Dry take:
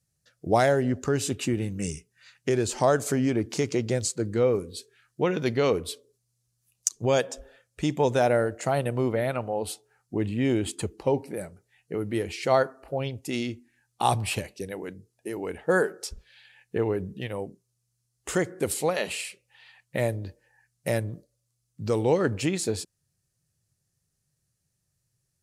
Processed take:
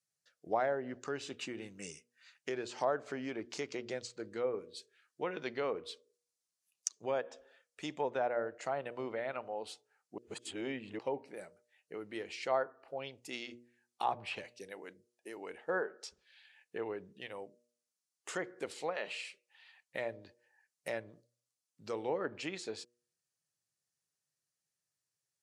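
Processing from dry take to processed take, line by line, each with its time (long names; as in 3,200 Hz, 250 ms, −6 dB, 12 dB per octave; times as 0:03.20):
0:10.18–0:10.99: reverse
whole clip: meter weighting curve A; treble cut that deepens with the level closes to 1,500 Hz, closed at −22 dBFS; hum removal 120.1 Hz, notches 5; level −8.5 dB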